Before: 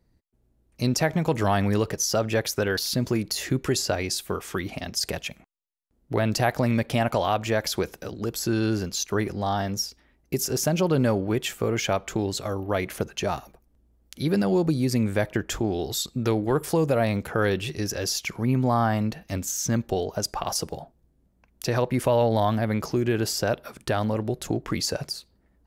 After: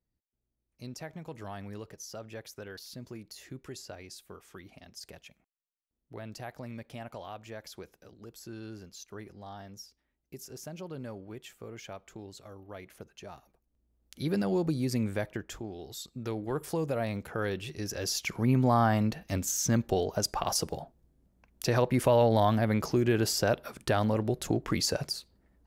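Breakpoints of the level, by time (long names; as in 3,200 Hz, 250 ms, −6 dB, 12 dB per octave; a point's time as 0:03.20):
0:13.34 −19 dB
0:14.22 −6.5 dB
0:15.05 −6.5 dB
0:15.75 −15.5 dB
0:16.62 −9 dB
0:17.70 −9 dB
0:18.37 −2 dB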